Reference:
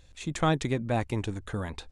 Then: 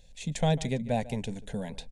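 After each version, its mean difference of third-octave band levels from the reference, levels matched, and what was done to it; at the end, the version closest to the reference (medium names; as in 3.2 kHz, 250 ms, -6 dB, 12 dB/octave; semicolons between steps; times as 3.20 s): 3.5 dB: bass shelf 140 Hz +4 dB; static phaser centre 330 Hz, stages 6; echo from a far wall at 25 m, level -18 dB; trim +1 dB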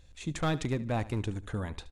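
2.0 dB: bass shelf 240 Hz +3.5 dB; hard clipper -20 dBFS, distortion -13 dB; feedback delay 73 ms, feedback 34%, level -17.5 dB; trim -3.5 dB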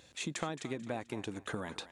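6.5 dB: high-pass 190 Hz 12 dB/octave; compression 6:1, threshold -39 dBFS, peak gain reduction 18 dB; thinning echo 220 ms, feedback 34%, high-pass 420 Hz, level -14 dB; trim +4 dB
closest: second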